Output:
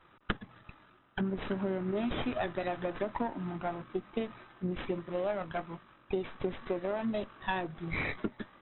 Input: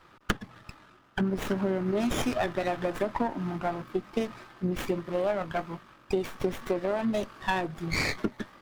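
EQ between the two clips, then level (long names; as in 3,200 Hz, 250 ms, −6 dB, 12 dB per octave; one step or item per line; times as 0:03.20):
linear-phase brick-wall low-pass 4,000 Hz
−5.0 dB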